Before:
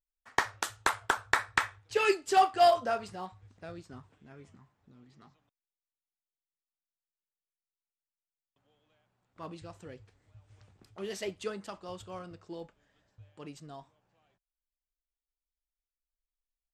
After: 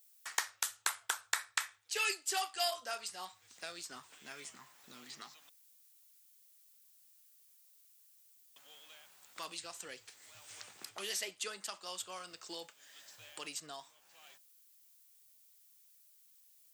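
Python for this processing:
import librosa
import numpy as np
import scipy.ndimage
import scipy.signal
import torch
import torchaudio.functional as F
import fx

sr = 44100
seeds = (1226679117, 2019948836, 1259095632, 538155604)

y = np.diff(x, prepend=0.0)
y = fx.band_squash(y, sr, depth_pct=70)
y = y * 10.0 ** (7.5 / 20.0)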